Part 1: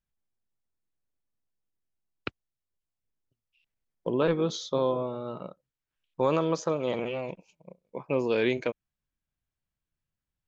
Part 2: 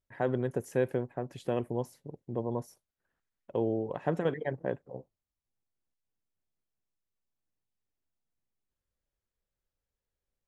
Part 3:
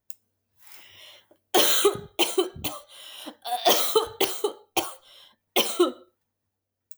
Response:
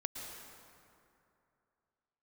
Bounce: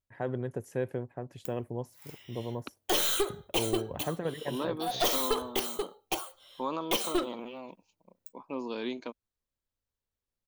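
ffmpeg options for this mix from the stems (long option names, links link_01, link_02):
-filter_complex "[0:a]equalizer=frequency=125:width_type=o:width=1:gain=-11,equalizer=frequency=250:width_type=o:width=1:gain=12,equalizer=frequency=500:width_type=o:width=1:gain=-3,equalizer=frequency=1000:width_type=o:width=1:gain=12,equalizer=frequency=2000:width_type=o:width=1:gain=-5,equalizer=frequency=4000:width_type=o:width=1:gain=11,equalizer=frequency=8000:width_type=o:width=1:gain=4,adelay=400,volume=-14dB[link_01];[1:a]equalizer=frequency=100:width=2.5:gain=5.5,volume=-4dB[link_02];[2:a]acontrast=64,aeval=exprs='clip(val(0),-1,0.141)':channel_layout=same,adelay=1350,volume=-11.5dB[link_03];[link_01][link_02][link_03]amix=inputs=3:normalize=0"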